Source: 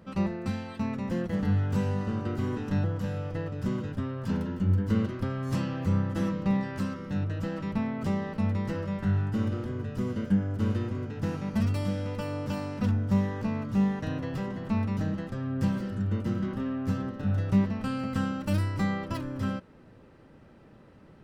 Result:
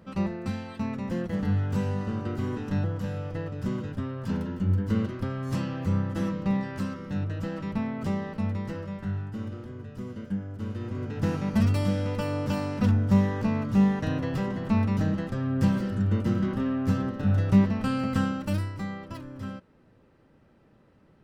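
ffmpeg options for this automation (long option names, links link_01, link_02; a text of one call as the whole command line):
ffmpeg -i in.wav -af "volume=10.5dB,afade=type=out:start_time=8.12:duration=1.2:silence=0.473151,afade=type=in:start_time=10.74:duration=0.47:silence=0.298538,afade=type=out:start_time=18.13:duration=0.65:silence=0.316228" out.wav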